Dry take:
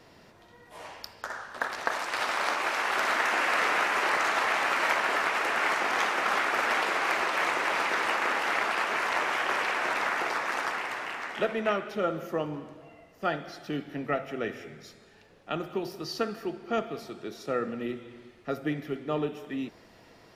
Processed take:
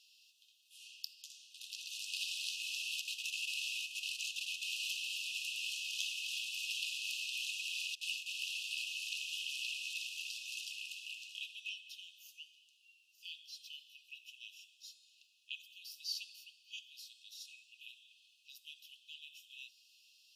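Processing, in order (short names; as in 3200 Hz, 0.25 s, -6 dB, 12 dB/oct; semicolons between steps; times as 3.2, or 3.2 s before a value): 3.01–4.62 level quantiser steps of 9 dB; 7.95–8.4 gate with hold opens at -17 dBFS; brick-wall FIR high-pass 2500 Hz; gain -1.5 dB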